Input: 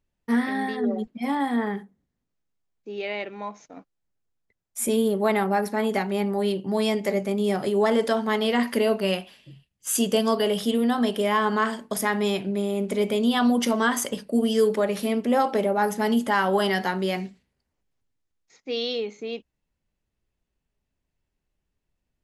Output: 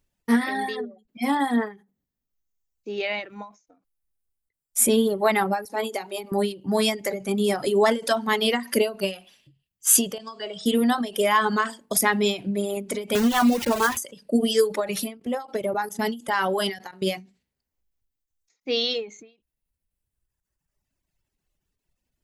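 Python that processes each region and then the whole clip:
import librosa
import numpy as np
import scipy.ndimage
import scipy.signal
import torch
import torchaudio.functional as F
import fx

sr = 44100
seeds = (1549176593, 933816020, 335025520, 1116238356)

y = fx.chain(x, sr, fx.highpass(hz=310.0, slope=12),
    fx.peak_eq(hz=1700.0, db=-5.5, octaves=1.1),
    fx.hum_notches(base_hz=50, count=9), at=(5.65, 6.32))
y = fx.chain(y, sr, fx.steep_lowpass(hz=8700.0, slope=72),
    fx.comb_fb(f0_hz=160.0, decay_s=0.68, harmonics='all', damping=0.0, mix_pct=70), at=(10.18, 10.66))
y = fx.chain(y, sr, fx.lowpass(hz=2000.0, slope=12),
    fx.sample_gate(floor_db=-27.5),
    fx.band_squash(depth_pct=40), at=(13.15, 13.97))
y = fx.chain(y, sr, fx.level_steps(step_db=13),
    fx.quant_float(bits=8), at=(15.17, 17.07))
y = fx.dereverb_blind(y, sr, rt60_s=1.6)
y = fx.high_shelf(y, sr, hz=4200.0, db=7.5)
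y = fx.end_taper(y, sr, db_per_s=170.0)
y = y * 10.0 ** (3.5 / 20.0)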